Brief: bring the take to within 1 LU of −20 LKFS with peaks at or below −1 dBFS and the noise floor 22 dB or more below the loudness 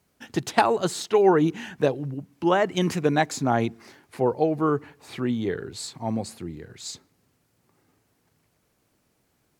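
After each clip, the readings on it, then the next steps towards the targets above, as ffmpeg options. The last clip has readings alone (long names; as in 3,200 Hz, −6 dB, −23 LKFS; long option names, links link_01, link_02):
integrated loudness −24.5 LKFS; sample peak −2.0 dBFS; target loudness −20.0 LKFS
→ -af "volume=4.5dB,alimiter=limit=-1dB:level=0:latency=1"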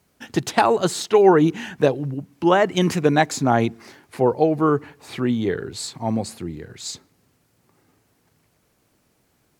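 integrated loudness −20.5 LKFS; sample peak −1.0 dBFS; background noise floor −65 dBFS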